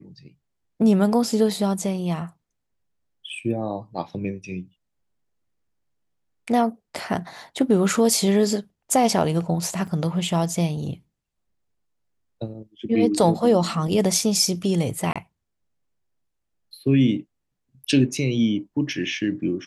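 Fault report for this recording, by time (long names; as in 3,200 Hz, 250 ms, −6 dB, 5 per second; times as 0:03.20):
0:09.87–0:09.88: drop-out 5.7 ms
0:15.13–0:15.16: drop-out 26 ms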